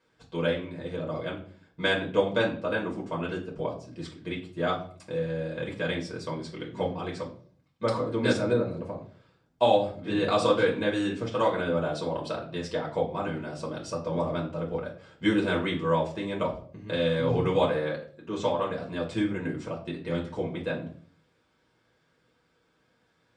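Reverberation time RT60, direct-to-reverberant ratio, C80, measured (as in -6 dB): 0.50 s, -3.5 dB, 14.5 dB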